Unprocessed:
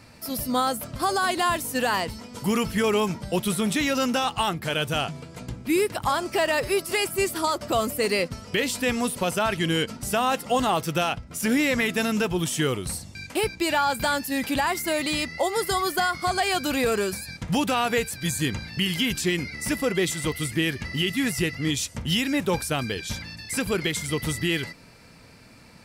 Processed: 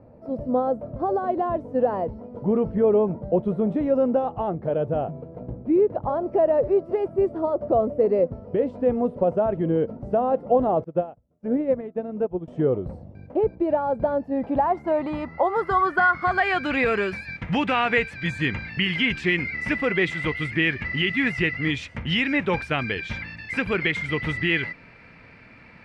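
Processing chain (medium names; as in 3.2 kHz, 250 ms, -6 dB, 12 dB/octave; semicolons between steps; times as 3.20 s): low-pass sweep 580 Hz -> 2.2 kHz, 14.14–16.83 s; 10.84–12.48 s: upward expansion 2.5:1, over -35 dBFS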